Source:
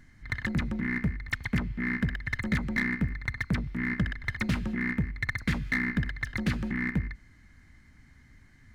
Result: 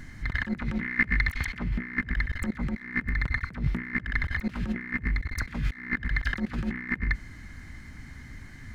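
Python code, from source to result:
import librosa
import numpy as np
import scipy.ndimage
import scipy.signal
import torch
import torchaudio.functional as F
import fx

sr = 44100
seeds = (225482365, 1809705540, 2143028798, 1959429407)

y = fx.dynamic_eq(x, sr, hz=1600.0, q=0.85, threshold_db=-44.0, ratio=4.0, max_db=5)
y = fx.over_compress(y, sr, threshold_db=-35.0, ratio=-0.5)
y = fx.peak_eq(y, sr, hz=3100.0, db=7.0, octaves=2.6, at=(0.59, 1.64))
y = y * librosa.db_to_amplitude(6.0)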